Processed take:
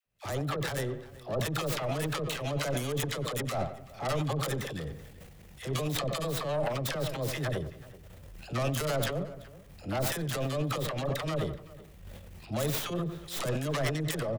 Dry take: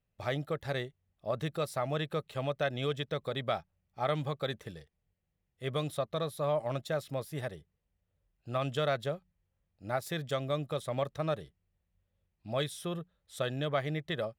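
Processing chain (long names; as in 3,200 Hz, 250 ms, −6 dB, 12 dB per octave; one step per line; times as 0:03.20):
stylus tracing distortion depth 0.35 ms
camcorder AGC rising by 55 dB per second
all-pass dispersion lows, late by 63 ms, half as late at 650 Hz
on a send: feedback echo with a low-pass in the loop 91 ms, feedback 39%, low-pass 2,500 Hz, level −16 dB
on the sum: transient designer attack −9 dB, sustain +10 dB
slap from a distant wall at 65 metres, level −19 dB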